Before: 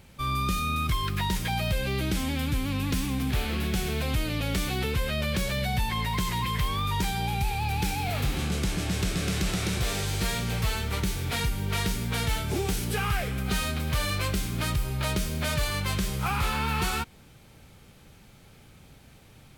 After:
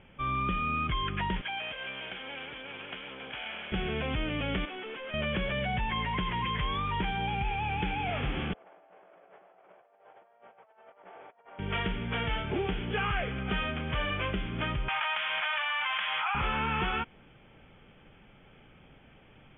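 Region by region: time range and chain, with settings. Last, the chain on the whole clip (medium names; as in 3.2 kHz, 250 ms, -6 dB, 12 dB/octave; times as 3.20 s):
1.41–3.72 s: comb filter that takes the minimum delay 1.3 ms + high-pass 1.3 kHz 6 dB/octave
4.65–5.14 s: high-pass 260 Hz 24 dB/octave + hard clipper -37.5 dBFS
8.53–11.59 s: one-bit delta coder 32 kbps, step -43 dBFS + ladder band-pass 760 Hz, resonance 55% + compressor with a negative ratio -54 dBFS, ratio -0.5
14.88–16.35 s: elliptic band-pass 820–5000 Hz + level flattener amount 100%
whole clip: Chebyshev low-pass 3.4 kHz, order 10; peaking EQ 82 Hz -7.5 dB 1.7 oct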